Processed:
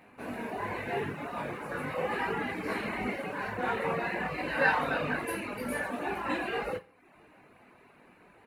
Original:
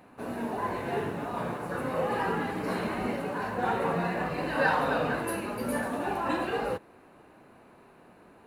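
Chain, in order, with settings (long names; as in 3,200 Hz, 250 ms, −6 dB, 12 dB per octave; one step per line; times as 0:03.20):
parametric band 2,200 Hz +9.5 dB 0.71 octaves
on a send: reverse bouncing-ball delay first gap 20 ms, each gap 1.4×, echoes 5
on the sum: reverb reduction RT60 0.59 s
level −4.5 dB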